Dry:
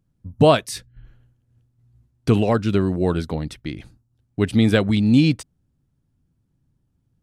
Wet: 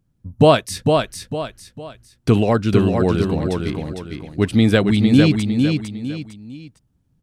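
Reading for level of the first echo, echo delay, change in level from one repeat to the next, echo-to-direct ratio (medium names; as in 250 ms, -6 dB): -4.5 dB, 454 ms, -9.0 dB, -4.0 dB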